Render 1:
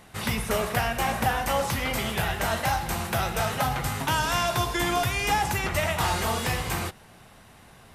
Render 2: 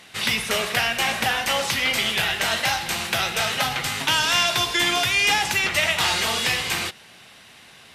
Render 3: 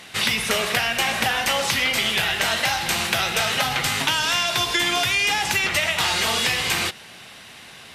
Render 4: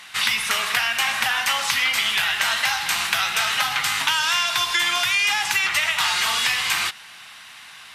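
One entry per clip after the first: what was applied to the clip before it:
meter weighting curve D
downward compressor, threshold −23 dBFS, peak gain reduction 7.5 dB; level +5 dB
low shelf with overshoot 730 Hz −11.5 dB, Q 1.5

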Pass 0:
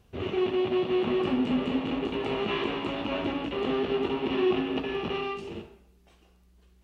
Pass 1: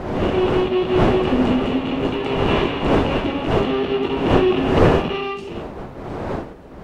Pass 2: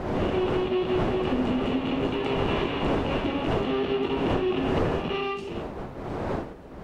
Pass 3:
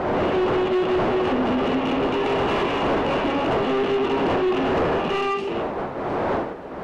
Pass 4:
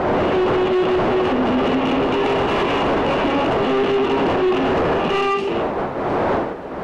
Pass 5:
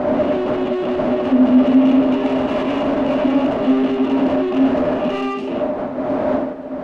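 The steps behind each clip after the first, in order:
wind on the microphone 560 Hz −29 dBFS; level +7 dB
downward compressor 6 to 1, threshold −18 dBFS, peak gain reduction 10 dB; level −3.5 dB
mid-hump overdrive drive 22 dB, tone 1,300 Hz, clips at −12.5 dBFS
brickwall limiter −17 dBFS, peak gain reduction 3.5 dB; level +5 dB
hollow resonant body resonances 260/600 Hz, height 17 dB, ringing for 90 ms; level −6.5 dB

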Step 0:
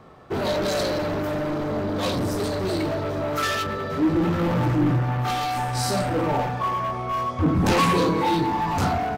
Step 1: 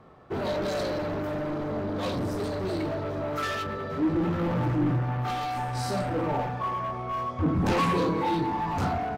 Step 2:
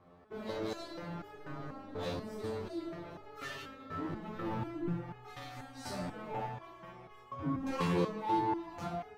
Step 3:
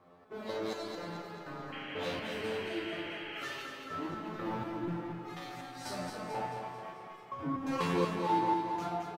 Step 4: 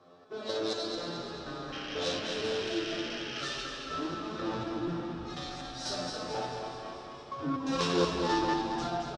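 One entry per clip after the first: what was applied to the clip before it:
high-shelf EQ 3,900 Hz −8 dB; level −4.5 dB
step-sequenced resonator 4.1 Hz 88–420 Hz; level +1 dB
low-shelf EQ 140 Hz −12 dB; sound drawn into the spectrogram noise, 0:01.72–0:03.44, 1,400–3,300 Hz −48 dBFS; on a send: repeating echo 220 ms, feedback 54%, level −6 dB; on the sum: level +2 dB
phase distortion by the signal itself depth 0.2 ms; loudspeaker in its box 110–8,100 Hz, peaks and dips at 200 Hz −9 dB, 920 Hz −7 dB, 2,100 Hz −9 dB, 3,800 Hz +7 dB, 5,400 Hz +9 dB; echo with shifted repeats 282 ms, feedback 57%, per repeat −100 Hz, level −12 dB; level +4.5 dB

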